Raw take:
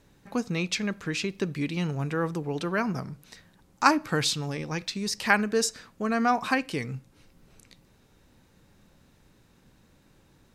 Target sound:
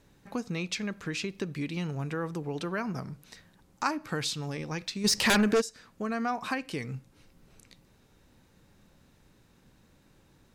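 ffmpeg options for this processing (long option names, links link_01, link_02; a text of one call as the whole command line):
ffmpeg -i in.wav -filter_complex "[0:a]asplit=3[link_01][link_02][link_03];[link_01]afade=type=out:start_time=5.04:duration=0.02[link_04];[link_02]aeval=exprs='0.531*sin(PI/2*5.62*val(0)/0.531)':channel_layout=same,afade=type=in:start_time=5.04:duration=0.02,afade=type=out:start_time=5.6:duration=0.02[link_05];[link_03]afade=type=in:start_time=5.6:duration=0.02[link_06];[link_04][link_05][link_06]amix=inputs=3:normalize=0,acompressor=threshold=-30dB:ratio=2,volume=-1.5dB" out.wav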